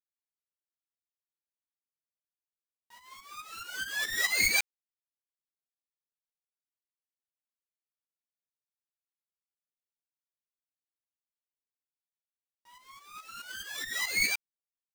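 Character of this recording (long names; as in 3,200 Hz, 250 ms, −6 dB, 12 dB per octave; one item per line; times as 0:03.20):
a quantiser's noise floor 12 bits, dither none
tremolo saw up 4.7 Hz, depth 75%
aliases and images of a low sample rate 11,000 Hz, jitter 0%
a shimmering, thickened sound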